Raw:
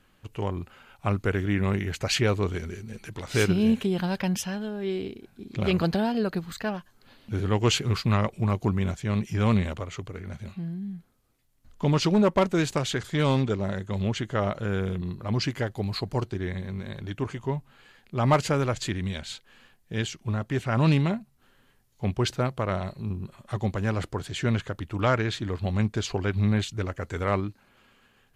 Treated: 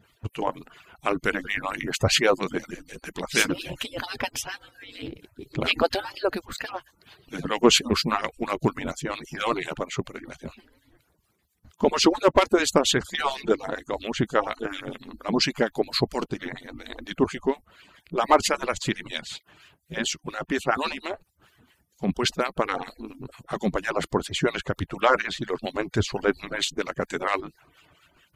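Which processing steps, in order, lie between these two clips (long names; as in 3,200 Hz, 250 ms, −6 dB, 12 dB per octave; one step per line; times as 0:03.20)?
harmonic-percussive split with one part muted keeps percussive
0:20.90–0:22.09: downward compressor 2 to 1, threshold −36 dBFS, peak gain reduction 6.5 dB
two-band tremolo in antiphase 4.3 Hz, depth 70%, crossover 1,500 Hz
boost into a limiter +14.5 dB
level −4.5 dB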